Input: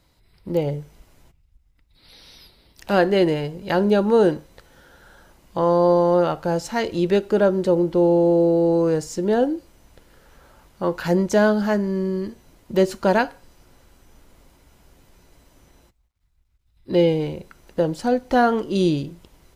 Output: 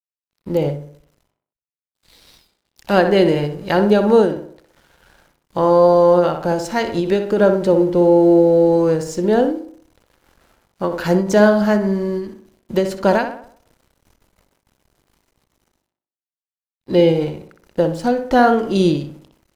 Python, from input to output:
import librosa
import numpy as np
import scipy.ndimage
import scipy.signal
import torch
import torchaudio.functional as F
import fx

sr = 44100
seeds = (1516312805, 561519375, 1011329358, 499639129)

y = np.sign(x) * np.maximum(np.abs(x) - 10.0 ** (-50.0 / 20.0), 0.0)
y = fx.echo_tape(y, sr, ms=62, feedback_pct=48, wet_db=-6.5, lp_hz=2200.0, drive_db=1.0, wow_cents=5)
y = fx.end_taper(y, sr, db_per_s=100.0)
y = y * librosa.db_to_amplitude(4.0)